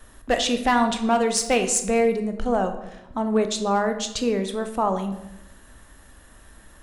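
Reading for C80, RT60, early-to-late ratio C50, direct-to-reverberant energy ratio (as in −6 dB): 12.0 dB, 0.90 s, 9.5 dB, 6.5 dB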